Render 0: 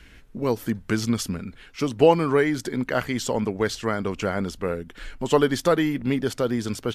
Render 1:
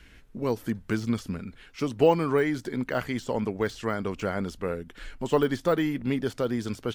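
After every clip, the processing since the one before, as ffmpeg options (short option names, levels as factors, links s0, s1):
-af "deesser=0.85,volume=0.668"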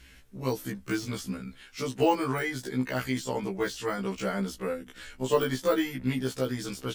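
-af "highshelf=f=3700:g=10,afftfilt=real='re*1.73*eq(mod(b,3),0)':imag='im*1.73*eq(mod(b,3),0)':win_size=2048:overlap=0.75"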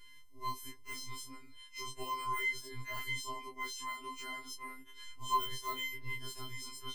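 -af "afftfilt=real='hypot(re,im)*cos(PI*b)':imag='0':win_size=512:overlap=0.75,afftfilt=real='re*2.45*eq(mod(b,6),0)':imag='im*2.45*eq(mod(b,6),0)':win_size=2048:overlap=0.75,volume=0.841"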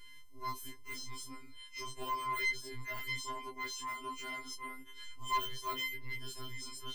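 -af "aeval=exprs='(tanh(44.7*val(0)+0.5)-tanh(0.5))/44.7':c=same,volume=1.88"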